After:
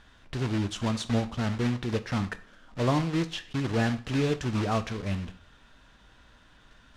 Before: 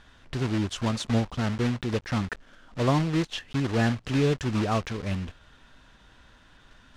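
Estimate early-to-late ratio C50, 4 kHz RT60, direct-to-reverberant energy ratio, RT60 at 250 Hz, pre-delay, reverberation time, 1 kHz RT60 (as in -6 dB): 16.5 dB, 0.45 s, 10.5 dB, 0.45 s, 4 ms, 0.45 s, 0.45 s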